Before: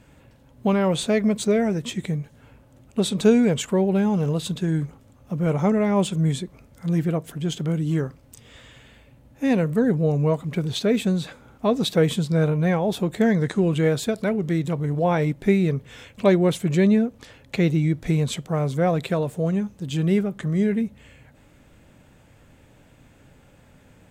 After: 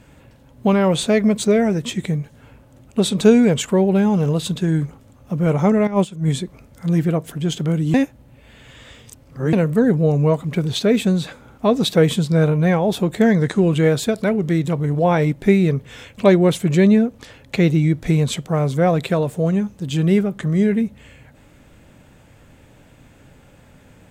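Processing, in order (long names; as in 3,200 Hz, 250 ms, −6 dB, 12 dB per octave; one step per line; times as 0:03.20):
0:05.87–0:06.28: noise gate −19 dBFS, range −12 dB
0:07.94–0:09.53: reverse
level +4.5 dB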